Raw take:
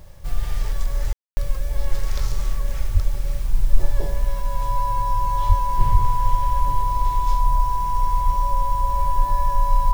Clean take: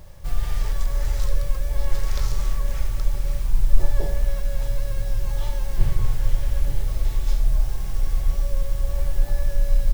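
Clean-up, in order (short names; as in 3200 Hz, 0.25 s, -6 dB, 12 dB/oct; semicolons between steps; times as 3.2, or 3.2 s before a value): notch 990 Hz, Q 30; 2.93–3.05 HPF 140 Hz 24 dB/oct; 5.48–5.6 HPF 140 Hz 24 dB/oct; 5.91–6.03 HPF 140 Hz 24 dB/oct; room tone fill 1.13–1.37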